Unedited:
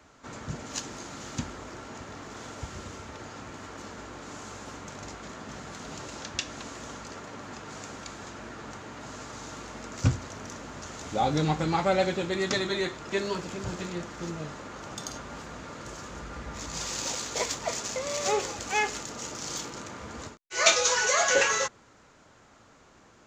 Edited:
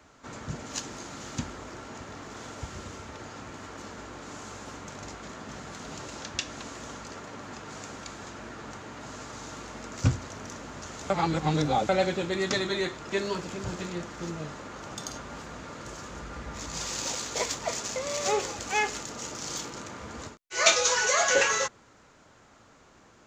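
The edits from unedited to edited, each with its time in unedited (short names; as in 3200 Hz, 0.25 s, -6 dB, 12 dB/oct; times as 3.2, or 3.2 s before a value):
11.1–11.89 reverse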